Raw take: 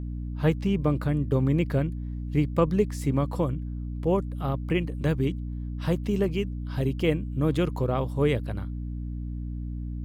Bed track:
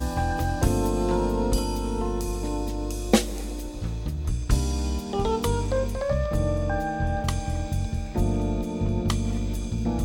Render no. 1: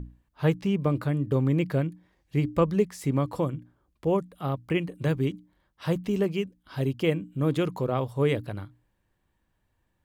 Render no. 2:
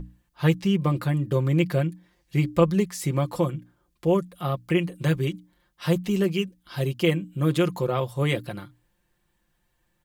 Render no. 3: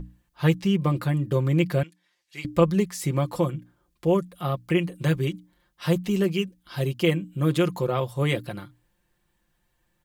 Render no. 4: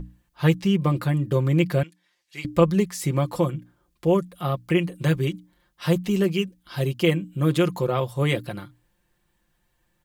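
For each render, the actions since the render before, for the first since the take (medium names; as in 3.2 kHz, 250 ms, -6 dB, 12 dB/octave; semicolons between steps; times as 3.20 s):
hum notches 60/120/180/240/300 Hz
treble shelf 2.4 kHz +7.5 dB; comb 5.7 ms
1.83–2.45 s: band-pass filter 4.4 kHz, Q 0.54
trim +1.5 dB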